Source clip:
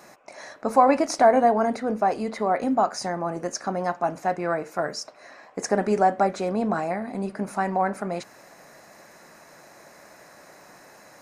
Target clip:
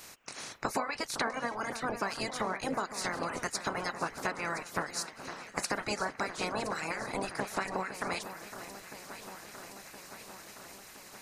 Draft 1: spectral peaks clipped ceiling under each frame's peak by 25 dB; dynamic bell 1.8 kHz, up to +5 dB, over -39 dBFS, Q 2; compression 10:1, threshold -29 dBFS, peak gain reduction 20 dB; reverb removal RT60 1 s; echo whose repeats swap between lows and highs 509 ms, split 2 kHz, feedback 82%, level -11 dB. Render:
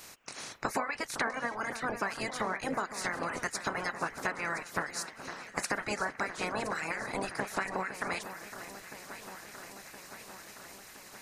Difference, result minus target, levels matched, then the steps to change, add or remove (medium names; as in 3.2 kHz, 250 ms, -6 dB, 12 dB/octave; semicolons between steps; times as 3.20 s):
4 kHz band -3.0 dB
change: dynamic bell 4.4 kHz, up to +5 dB, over -39 dBFS, Q 2